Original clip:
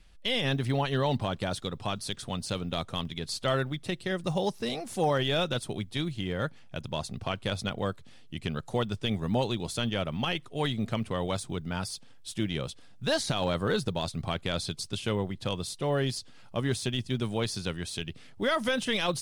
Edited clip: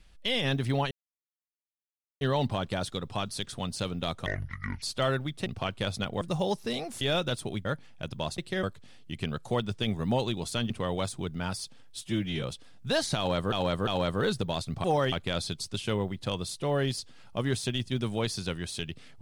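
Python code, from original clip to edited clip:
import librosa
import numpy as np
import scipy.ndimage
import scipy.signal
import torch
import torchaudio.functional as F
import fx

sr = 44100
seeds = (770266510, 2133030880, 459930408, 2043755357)

y = fx.edit(x, sr, fx.insert_silence(at_s=0.91, length_s=1.3),
    fx.speed_span(start_s=2.96, length_s=0.32, speed=0.57),
    fx.swap(start_s=3.92, length_s=0.25, other_s=7.11, other_length_s=0.75),
    fx.move(start_s=4.97, length_s=0.28, to_s=14.31),
    fx.cut(start_s=5.89, length_s=0.49),
    fx.cut(start_s=9.93, length_s=1.08),
    fx.stretch_span(start_s=12.32, length_s=0.28, factor=1.5),
    fx.repeat(start_s=13.34, length_s=0.35, count=3), tone=tone)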